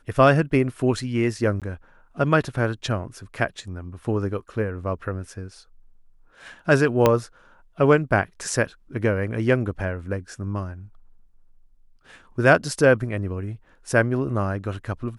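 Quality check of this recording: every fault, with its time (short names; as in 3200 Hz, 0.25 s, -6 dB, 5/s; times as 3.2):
1.6–1.62 gap 17 ms
7.06 pop -4 dBFS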